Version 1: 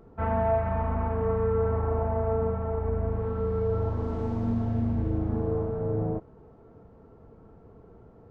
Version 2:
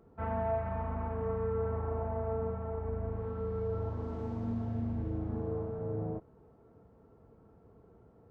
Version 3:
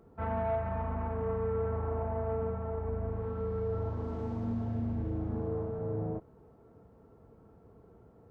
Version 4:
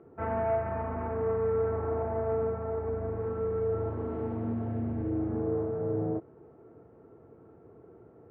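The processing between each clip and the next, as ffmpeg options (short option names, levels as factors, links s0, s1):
-af "highpass=45,volume=0.422"
-af "asoftclip=type=tanh:threshold=0.0562,volume=1.26"
-af "highpass=110,equalizer=f=200:t=q:w=4:g=-7,equalizer=f=350:t=q:w=4:g=7,equalizer=f=980:t=q:w=4:g=-4,lowpass=f=2500:w=0.5412,lowpass=f=2500:w=1.3066,volume=1.58"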